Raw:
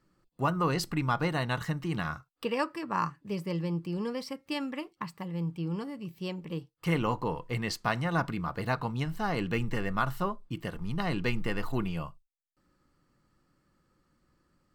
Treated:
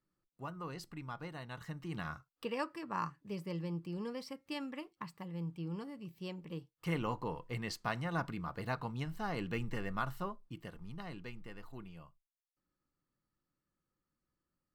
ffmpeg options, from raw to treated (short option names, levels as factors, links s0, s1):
-af "volume=0.422,afade=t=in:st=1.5:d=0.61:silence=0.375837,afade=t=out:st=9.95:d=1.37:silence=0.298538"